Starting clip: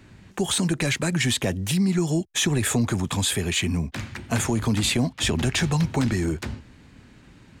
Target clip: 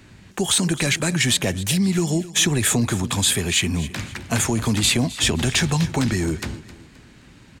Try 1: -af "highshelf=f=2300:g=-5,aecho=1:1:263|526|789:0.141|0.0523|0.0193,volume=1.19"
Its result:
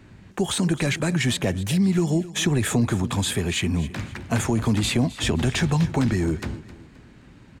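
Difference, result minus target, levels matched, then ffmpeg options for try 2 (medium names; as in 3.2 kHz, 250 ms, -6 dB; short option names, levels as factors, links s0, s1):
4 kHz band -4.0 dB
-af "highshelf=f=2300:g=5,aecho=1:1:263|526|789:0.141|0.0523|0.0193,volume=1.19"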